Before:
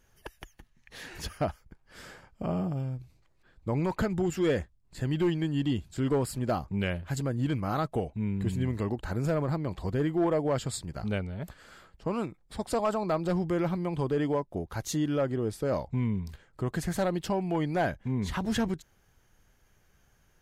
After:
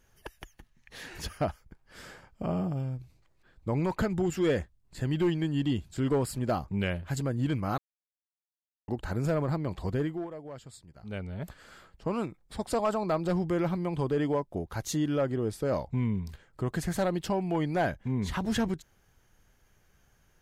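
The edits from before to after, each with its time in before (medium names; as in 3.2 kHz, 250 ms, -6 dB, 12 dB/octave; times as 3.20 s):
7.78–8.88 s: mute
9.94–11.36 s: dip -15 dB, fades 0.34 s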